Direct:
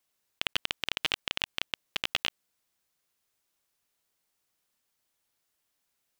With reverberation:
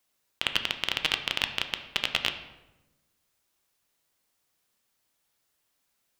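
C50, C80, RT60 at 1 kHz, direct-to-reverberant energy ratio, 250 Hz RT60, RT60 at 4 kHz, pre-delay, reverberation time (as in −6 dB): 10.0 dB, 12.0 dB, 0.90 s, 6.5 dB, 1.4 s, 0.65 s, 7 ms, 1.0 s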